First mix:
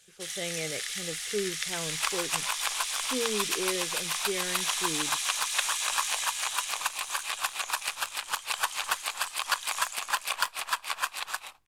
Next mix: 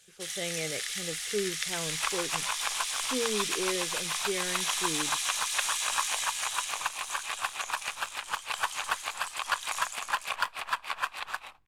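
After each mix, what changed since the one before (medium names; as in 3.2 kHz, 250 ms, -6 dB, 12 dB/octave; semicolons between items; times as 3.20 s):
second sound: add tone controls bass +4 dB, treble -11 dB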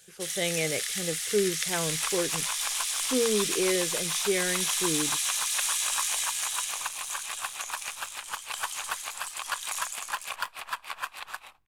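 speech +6.0 dB; second sound -3.5 dB; master: add treble shelf 9.1 kHz +10.5 dB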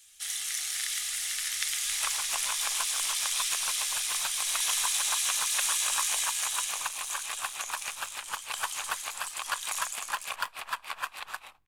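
speech: muted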